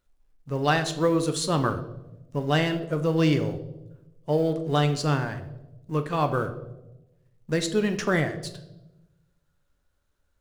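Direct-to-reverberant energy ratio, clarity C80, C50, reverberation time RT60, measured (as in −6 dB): 7.5 dB, 14.5 dB, 11.5 dB, 1.0 s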